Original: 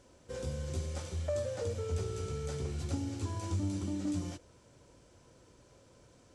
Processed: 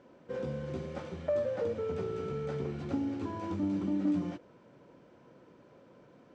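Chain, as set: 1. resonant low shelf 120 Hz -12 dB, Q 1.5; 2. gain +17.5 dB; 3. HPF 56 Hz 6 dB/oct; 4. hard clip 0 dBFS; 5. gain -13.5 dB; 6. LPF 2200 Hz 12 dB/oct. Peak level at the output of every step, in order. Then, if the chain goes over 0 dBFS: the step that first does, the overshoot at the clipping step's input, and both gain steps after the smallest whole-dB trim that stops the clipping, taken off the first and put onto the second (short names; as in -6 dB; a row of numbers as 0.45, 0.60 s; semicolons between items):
-23.5, -6.0, -6.0, -6.0, -19.5, -20.0 dBFS; no overload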